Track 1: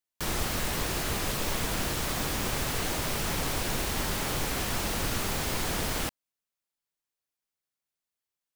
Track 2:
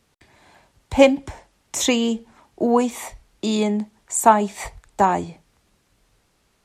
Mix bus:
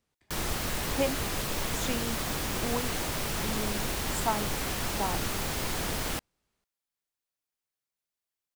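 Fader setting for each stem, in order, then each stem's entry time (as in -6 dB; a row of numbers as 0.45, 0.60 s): -1.5, -16.0 dB; 0.10, 0.00 s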